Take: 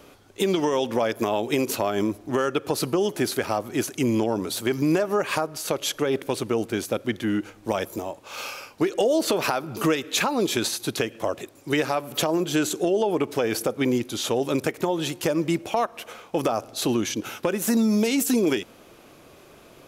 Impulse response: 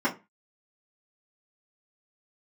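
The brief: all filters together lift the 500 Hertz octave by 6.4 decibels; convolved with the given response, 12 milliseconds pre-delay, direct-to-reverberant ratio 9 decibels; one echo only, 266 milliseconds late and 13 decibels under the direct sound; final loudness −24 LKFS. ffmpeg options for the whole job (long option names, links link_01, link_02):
-filter_complex "[0:a]equalizer=frequency=500:width_type=o:gain=8,aecho=1:1:266:0.224,asplit=2[link_01][link_02];[1:a]atrim=start_sample=2205,adelay=12[link_03];[link_02][link_03]afir=irnorm=-1:irlink=0,volume=-21.5dB[link_04];[link_01][link_04]amix=inputs=2:normalize=0,volume=-4dB"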